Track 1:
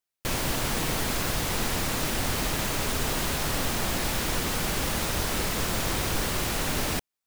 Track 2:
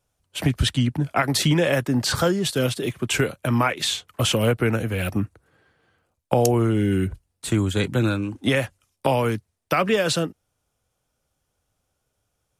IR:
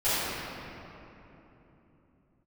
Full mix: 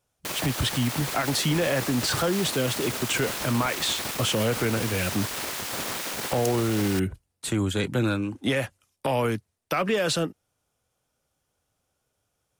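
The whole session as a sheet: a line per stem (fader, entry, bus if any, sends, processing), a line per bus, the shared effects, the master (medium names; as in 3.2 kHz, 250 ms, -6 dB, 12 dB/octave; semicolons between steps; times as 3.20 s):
-0.5 dB, 0.00 s, no send, one-sided wavefolder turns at -25.5 dBFS; spectral gate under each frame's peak -10 dB weak
-0.5 dB, 0.00 s, no send, bass shelf 73 Hz -9 dB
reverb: none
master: saturation -11.5 dBFS, distortion -21 dB; peak limiter -16.5 dBFS, peak gain reduction 4.5 dB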